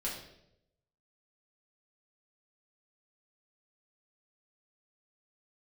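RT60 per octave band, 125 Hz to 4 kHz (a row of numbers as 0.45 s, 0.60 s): 1.1 s, 0.90 s, 0.95 s, 0.65 s, 0.65 s, 0.65 s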